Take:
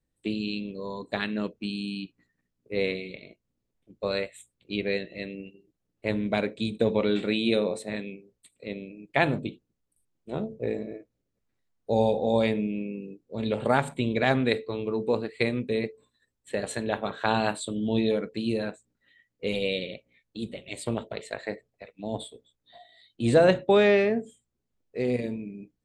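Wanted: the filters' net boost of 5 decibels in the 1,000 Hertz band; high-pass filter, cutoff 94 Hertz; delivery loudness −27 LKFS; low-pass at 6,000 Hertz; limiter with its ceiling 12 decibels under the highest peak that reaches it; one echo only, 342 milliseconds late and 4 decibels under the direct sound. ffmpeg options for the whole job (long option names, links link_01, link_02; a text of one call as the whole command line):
ffmpeg -i in.wav -af "highpass=94,lowpass=6000,equalizer=frequency=1000:width_type=o:gain=7,alimiter=limit=-15dB:level=0:latency=1,aecho=1:1:342:0.631,volume=1.5dB" out.wav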